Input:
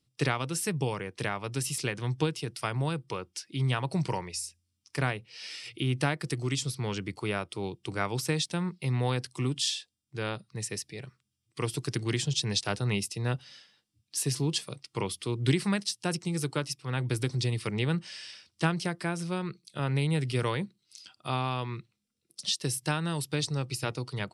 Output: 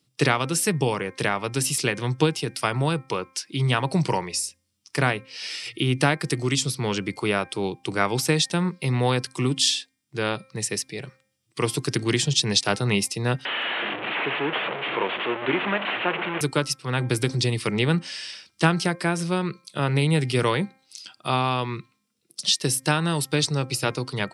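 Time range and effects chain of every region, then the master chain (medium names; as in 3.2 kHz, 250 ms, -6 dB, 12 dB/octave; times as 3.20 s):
13.45–16.41 s: one-bit delta coder 16 kbps, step -27 dBFS + high-pass 370 Hz + delay 172 ms -20.5 dB
whole clip: high-pass 140 Hz; de-hum 264.5 Hz, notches 9; trim +8.5 dB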